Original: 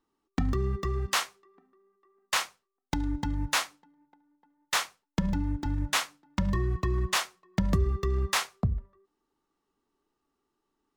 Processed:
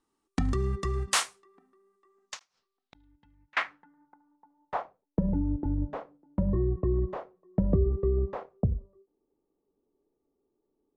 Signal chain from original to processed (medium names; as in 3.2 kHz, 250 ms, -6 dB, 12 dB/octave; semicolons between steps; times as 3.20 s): low-pass sweep 9.2 kHz -> 510 Hz, 1.94–5.14 s; 2.39–3.57 s: inverted gate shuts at -27 dBFS, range -33 dB; endings held to a fixed fall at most 340 dB/s